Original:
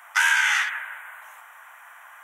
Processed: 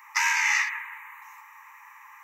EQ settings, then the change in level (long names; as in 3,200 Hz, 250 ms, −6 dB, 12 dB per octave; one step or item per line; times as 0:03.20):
linear-phase brick-wall high-pass 810 Hz
parametric band 5,500 Hz +2.5 dB 0.37 octaves
phaser with its sweep stopped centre 2,200 Hz, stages 8
+1.5 dB